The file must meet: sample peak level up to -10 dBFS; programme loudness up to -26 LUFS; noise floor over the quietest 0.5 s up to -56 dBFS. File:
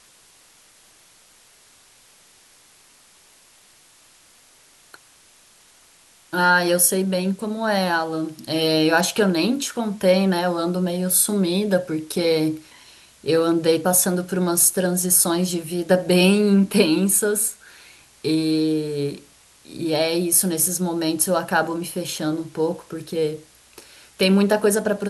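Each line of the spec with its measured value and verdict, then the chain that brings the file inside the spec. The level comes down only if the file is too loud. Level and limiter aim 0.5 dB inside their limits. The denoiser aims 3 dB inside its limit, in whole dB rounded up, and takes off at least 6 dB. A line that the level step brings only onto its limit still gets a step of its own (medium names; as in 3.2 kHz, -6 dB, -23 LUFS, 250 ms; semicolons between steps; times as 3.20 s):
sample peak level -3.5 dBFS: fail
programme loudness -20.0 LUFS: fail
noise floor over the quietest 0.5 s -53 dBFS: fail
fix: trim -6.5 dB; peak limiter -10.5 dBFS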